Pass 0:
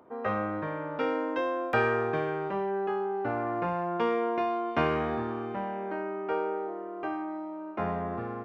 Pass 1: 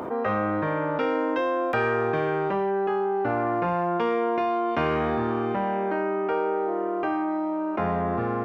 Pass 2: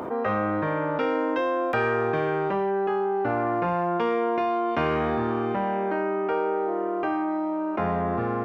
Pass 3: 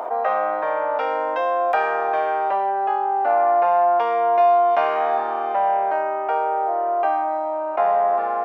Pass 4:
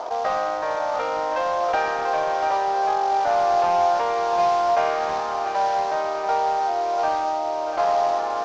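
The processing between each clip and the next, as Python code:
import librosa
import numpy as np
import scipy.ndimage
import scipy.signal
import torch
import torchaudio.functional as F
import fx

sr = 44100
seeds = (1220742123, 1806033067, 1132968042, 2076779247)

y1 = fx.env_flatten(x, sr, amount_pct=70)
y2 = y1
y3 = fx.highpass_res(y2, sr, hz=700.0, q=4.0)
y4 = fx.cvsd(y3, sr, bps=32000)
y4 = fx.echo_feedback(y4, sr, ms=690, feedback_pct=54, wet_db=-8.0)
y4 = y4 * 10.0 ** (-2.0 / 20.0)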